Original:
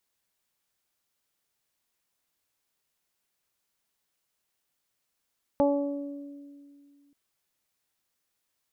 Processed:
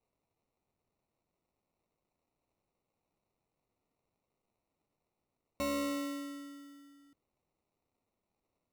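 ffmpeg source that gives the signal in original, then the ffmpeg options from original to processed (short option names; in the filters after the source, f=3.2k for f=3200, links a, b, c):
-f lavfi -i "aevalsrc='0.0708*pow(10,-3*t/2.41)*sin(2*PI*284*t)+0.1*pow(10,-3*t/1.29)*sin(2*PI*568*t)+0.0501*pow(10,-3*t/0.65)*sin(2*PI*852*t)+0.0075*pow(10,-3*t/0.89)*sin(2*PI*1136*t)':d=1.53:s=44100"
-af "aresample=11025,asoftclip=type=tanh:threshold=-30.5dB,aresample=44100,acrusher=samples=27:mix=1:aa=0.000001"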